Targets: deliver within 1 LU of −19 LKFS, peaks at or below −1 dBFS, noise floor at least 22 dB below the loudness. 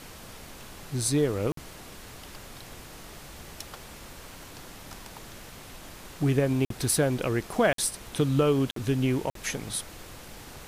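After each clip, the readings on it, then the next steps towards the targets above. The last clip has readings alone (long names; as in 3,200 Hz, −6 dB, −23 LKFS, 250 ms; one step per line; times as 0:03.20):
number of dropouts 5; longest dropout 53 ms; background noise floor −46 dBFS; target noise floor −49 dBFS; integrated loudness −27.0 LKFS; sample peak −11.5 dBFS; target loudness −19.0 LKFS
→ repair the gap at 0:01.52/0:06.65/0:07.73/0:08.71/0:09.30, 53 ms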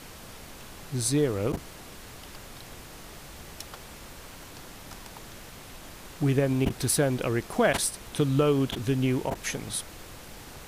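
number of dropouts 0; background noise floor −46 dBFS; target noise floor −49 dBFS
→ noise reduction from a noise print 6 dB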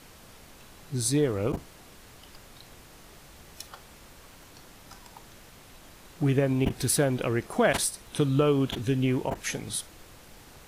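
background noise floor −51 dBFS; integrated loudness −27.0 LKFS; sample peak −11.5 dBFS; target loudness −19.0 LKFS
→ level +8 dB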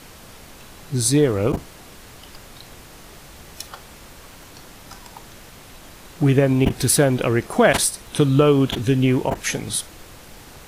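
integrated loudness −19.0 LKFS; sample peak −3.5 dBFS; background noise floor −43 dBFS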